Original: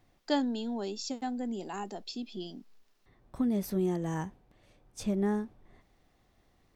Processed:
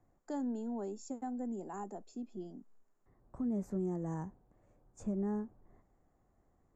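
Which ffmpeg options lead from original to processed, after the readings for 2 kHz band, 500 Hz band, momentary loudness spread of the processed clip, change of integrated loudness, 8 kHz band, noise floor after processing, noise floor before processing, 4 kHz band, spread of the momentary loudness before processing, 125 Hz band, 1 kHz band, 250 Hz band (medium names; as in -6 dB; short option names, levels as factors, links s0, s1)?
under -10 dB, -6.5 dB, 12 LU, -6.0 dB, under -10 dB, -74 dBFS, -69 dBFS, under -20 dB, 14 LU, -5.0 dB, -7.0 dB, -5.5 dB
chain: -filter_complex "[0:a]acrossover=split=200|1600[s0][s1][s2];[s1]alimiter=level_in=1.78:limit=0.0631:level=0:latency=1:release=86,volume=0.562[s3];[s2]bandpass=f=7100:t=q:w=11:csg=0[s4];[s0][s3][s4]amix=inputs=3:normalize=0,volume=0.631"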